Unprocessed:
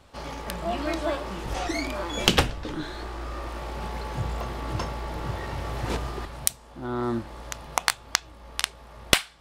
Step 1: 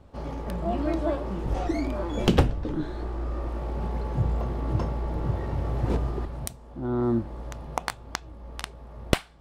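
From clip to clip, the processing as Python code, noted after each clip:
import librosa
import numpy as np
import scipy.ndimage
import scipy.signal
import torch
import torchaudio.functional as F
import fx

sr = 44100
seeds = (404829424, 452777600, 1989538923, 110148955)

y = fx.tilt_shelf(x, sr, db=9.0, hz=970.0)
y = F.gain(torch.from_numpy(y), -3.5).numpy()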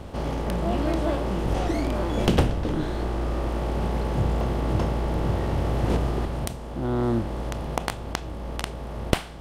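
y = fx.bin_compress(x, sr, power=0.6)
y = F.gain(torch.from_numpy(y), -2.0).numpy()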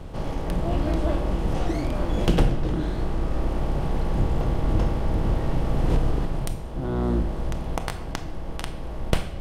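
y = fx.octave_divider(x, sr, octaves=2, level_db=3.0)
y = fx.room_shoebox(y, sr, seeds[0], volume_m3=840.0, walls='mixed', distance_m=0.61)
y = F.gain(torch.from_numpy(y), -3.0).numpy()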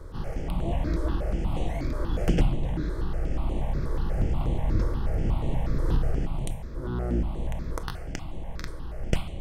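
y = fx.phaser_held(x, sr, hz=8.3, low_hz=750.0, high_hz=5100.0)
y = F.gain(torch.from_numpy(y), -2.0).numpy()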